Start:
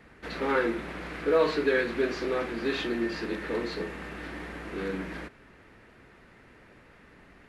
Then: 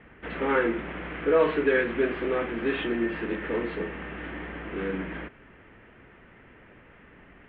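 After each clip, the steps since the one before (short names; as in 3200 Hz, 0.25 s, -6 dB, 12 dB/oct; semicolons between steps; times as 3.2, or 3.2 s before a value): Chebyshev low-pass 3200 Hz, order 5; gain +2.5 dB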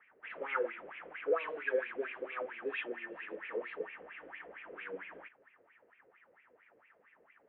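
wah 4.4 Hz 470–2500 Hz, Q 6.2; dynamic EQ 2900 Hz, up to +5 dB, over -59 dBFS, Q 1.9; gain -1 dB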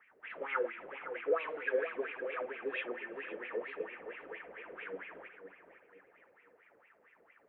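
darkening echo 0.512 s, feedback 38%, low-pass 1600 Hz, level -8.5 dB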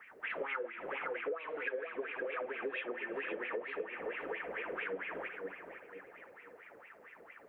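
compressor 12:1, threshold -45 dBFS, peak gain reduction 20 dB; gain +9.5 dB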